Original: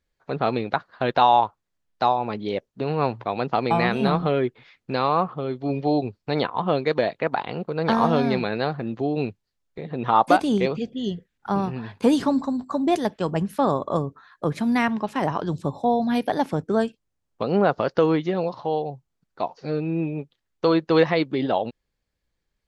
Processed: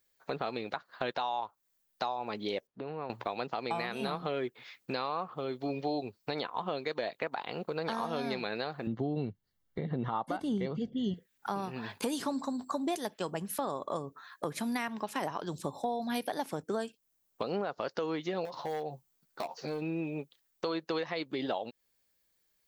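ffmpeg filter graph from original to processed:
-filter_complex "[0:a]asettb=1/sr,asplit=3[a][b][c];[a]atrim=end=2.674[d];[b]atrim=start=2.67:end=3.1,asetpts=PTS-STARTPTS,afade=t=in:d=0.004:c=qsin,afade=t=out:st=0.426:d=0.004:c=qsin,lowpass=3.7k,highshelf=f=2.1k:g=-10.5,acompressor=threshold=-39dB:ratio=2:attack=3.2:release=140:knee=1:detection=peak[e];[c]atrim=start=3.096[f];[d][e]acrossfade=d=0.004:c1=hsin:c2=qsin[g];[g][f]acrossfade=d=0.004:c1=qsin:c2=hsin,asettb=1/sr,asplit=3[h][i][j];[h]atrim=end=8.874[k];[i]atrim=start=8.87:end=11.14,asetpts=PTS-STARTPTS,afade=t=in:d=0.004:c=qsin,afade=t=out:st=2.266:d=0.004:c=qsin,asuperstop=centerf=2500:order=8:qfactor=7.1,bass=f=250:g=15,treble=f=4k:g=-12[l];[j]atrim=start=11.136[m];[k][l]acrossfade=d=0.004:c1=hsin:c2=qsin[n];[n][m]acrossfade=d=0.004:c1=qsin:c2=hsin,asettb=1/sr,asplit=3[o][p][q];[o]atrim=end=18.454[r];[p]atrim=start=18.45:end=19.82,asetpts=PTS-STARTPTS,afade=t=in:d=0.004:c=qsin,afade=t=out:st=1.366:d=0.004:c=qsin,asoftclip=type=hard:threshold=-20dB,acompressor=threshold=-30dB:ratio=5:attack=3.2:release=140:knee=1:detection=peak,asplit=2[s][t];[t]adelay=13,volume=-5.5dB[u];[s][u]amix=inputs=2:normalize=0,atrim=end_sample=60417[v];[q]atrim=start=19.816[w];[r][v]acrossfade=d=0.004:c1=hsin:c2=qsin[x];[x][w]acrossfade=d=0.004:c1=qsin:c2=hsin,aemphasis=mode=production:type=bsi,alimiter=limit=-14.5dB:level=0:latency=1:release=395,acompressor=threshold=-34dB:ratio=2.5"

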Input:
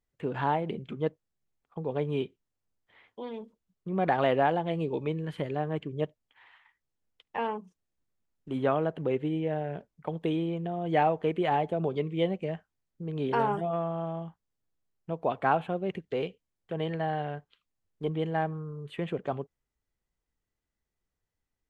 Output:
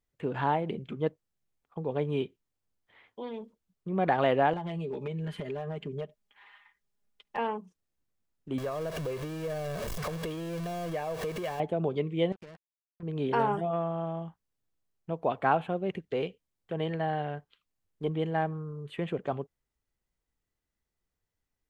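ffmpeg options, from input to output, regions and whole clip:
-filter_complex "[0:a]asettb=1/sr,asplit=3[a][b][c];[a]atrim=end=4.534[d];[b]atrim=start=4.53:end=7.37,asetpts=PTS-STARTPTS,afade=t=in:d=0.004:c=qsin,afade=t=out:st=2.836:d=0.004:c=qsin,aecho=1:1:4.9:0.77,atrim=end_sample=125244,acompressor=threshold=-31dB:ratio=8:attack=3.2:release=140:knee=1:detection=peak,aeval=exprs='clip(val(0),-1,0.0376)':c=same[e];[c]atrim=start=7.366[f];[d][e]acrossfade=d=0.004:c1=hsin:c2=qsin[g];[g][f]acrossfade=d=0.004:c1=qsin:c2=hsin,asettb=1/sr,asplit=3[h][i][j];[h]atrim=end=8.584[k];[i]atrim=start=8.58:end=11.6,asetpts=PTS-STARTPTS,afade=t=in:d=0.004:c=qsin,afade=t=out:st=3.016:d=0.004:c=qsin,aeval=exprs='val(0)+0.5*0.0316*sgn(val(0))':c=same,acompressor=threshold=-33dB:ratio=4:attack=3.2:release=140:knee=1:detection=peak,aecho=1:1:1.8:0.53,atrim=end_sample=133182[l];[j]atrim=start=11.596[m];[k][l]acrossfade=d=0.004:c1=hsin:c2=qsin[n];[n][m]acrossfade=d=0.004:c1=qsin:c2=hsin,asettb=1/sr,asplit=3[o][p][q];[o]atrim=end=12.324[r];[p]atrim=start=12.32:end=13.03,asetpts=PTS-STARTPTS,afade=t=in:d=0.004:c=qsin,afade=t=out:st=0.706:d=0.004:c=qsin,acompressor=threshold=-45dB:ratio=6:attack=3.2:release=140:knee=1:detection=peak,acrusher=bits=7:mix=0:aa=0.5[s];[q]atrim=start=13.026[t];[r][s]acrossfade=d=0.004:c1=hsin:c2=qsin[u];[u][t]acrossfade=d=0.004:c1=qsin:c2=hsin"

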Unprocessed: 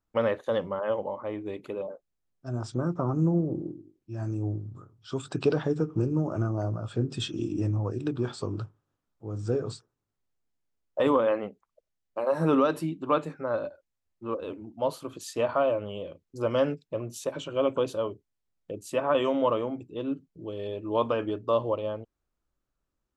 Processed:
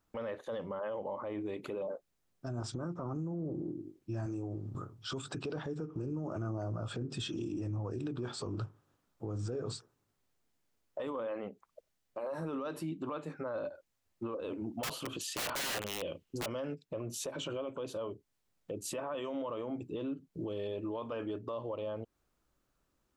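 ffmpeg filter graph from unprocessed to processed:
-filter_complex "[0:a]asettb=1/sr,asplit=3[a][b][c];[a]atrim=end=4.264[d];[b]atrim=start=4.26:end=4.75,asetpts=PTS-STARTPTS,afade=t=in:d=0.004:c=qsin,afade=t=out:st=0.486:d=0.004:c=qsin,highpass=f=230:p=1,asplit=2[e][f];[f]adelay=21,volume=-14dB[g];[e][g]amix=inputs=2:normalize=0,atrim=end_sample=21609[h];[c]atrim=start=4.746[i];[d][h]acrossfade=d=0.004:c1=hsin:c2=qsin[j];[j][i]acrossfade=d=0.004:c1=qsin:c2=hsin,asettb=1/sr,asplit=3[k][l][m];[k]atrim=end=14.834[n];[l]atrim=start=14.83:end=16.46,asetpts=PTS-STARTPTS,afade=t=in:d=0.004:c=qsin,afade=t=out:st=1.626:d=0.004:c=qsin,equalizer=f=2.9k:t=o:w=0.4:g=10.5,aeval=exprs='(mod(21.1*val(0)+1,2)-1)/21.1':c=same[o];[m]atrim=start=16.456[p];[n][o]acrossfade=d=0.004:c1=hsin:c2=qsin[q];[q][p]acrossfade=d=0.004:c1=qsin:c2=hsin,lowshelf=f=66:g=-8,acompressor=threshold=-40dB:ratio=5,alimiter=level_in=14dB:limit=-24dB:level=0:latency=1:release=12,volume=-14dB,volume=7.5dB"

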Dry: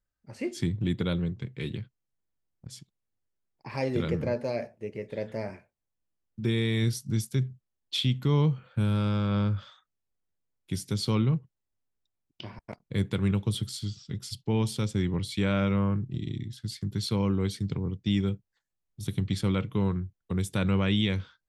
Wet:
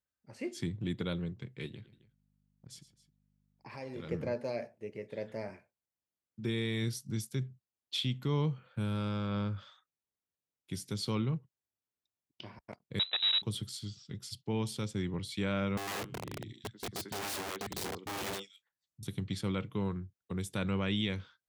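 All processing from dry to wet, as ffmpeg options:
-filter_complex "[0:a]asettb=1/sr,asplit=3[a][b][c];[a]atrim=end=1.664[d];[b]atrim=start=1.66:end=4.11,asetpts=PTS-STARTPTS,afade=t=in:d=0.004:c=qsin,afade=t=out:st=2.446:d=0.004:c=qsin,acompressor=threshold=-39dB:ratio=2:attack=3.2:release=140:knee=1:detection=peak,aeval=exprs='val(0)+0.000794*(sin(2*PI*50*n/s)+sin(2*PI*2*50*n/s)/2+sin(2*PI*3*50*n/s)/3+sin(2*PI*4*50*n/s)/4+sin(2*PI*5*50*n/s)/5)':c=same,aecho=1:1:114|266:0.2|0.126,atrim=end_sample=108045[e];[c]atrim=start=4.106[f];[d][e]acrossfade=d=0.004:c1=hsin:c2=qsin[g];[g][f]acrossfade=d=0.004:c1=qsin:c2=hsin,asettb=1/sr,asplit=3[h][i][j];[h]atrim=end=12.994[k];[i]atrim=start=12.99:end=13.42,asetpts=PTS-STARTPTS,afade=t=in:d=0.004:c=qsin,afade=t=out:st=0.426:d=0.004:c=qsin,acrusher=bits=5:dc=4:mix=0:aa=0.000001,lowpass=f=3.4k:t=q:w=0.5098,lowpass=f=3.4k:t=q:w=0.6013,lowpass=f=3.4k:t=q:w=0.9,lowpass=f=3.4k:t=q:w=2.563,afreqshift=-4000[l];[j]atrim=start=13.416[m];[k][l]acrossfade=d=0.004:c1=hsin:c2=qsin[n];[n][m]acrossfade=d=0.004:c1=qsin:c2=hsin,asettb=1/sr,asplit=3[o][p][q];[o]atrim=end=15.774[r];[p]atrim=start=15.77:end=19.03,asetpts=PTS-STARTPTS,afade=t=in:d=0.004:c=qsin,afade=t=out:st=3.256:d=0.004:c=qsin,acrossover=split=270|3000[s][t][u];[t]adelay=100[v];[u]adelay=270[w];[s][v][w]amix=inputs=3:normalize=0,atrim=end_sample=143766,aeval=exprs='(mod(23.7*val(0)+1,2)-1)/23.7':c=same[x];[q]atrim=start=19.026[y];[r][x]acrossfade=d=0.004:c1=hsin:c2=qsin[z];[z][y]acrossfade=d=0.004:c1=qsin:c2=hsin,highpass=63,lowshelf=f=170:g=-5,volume=-5dB"

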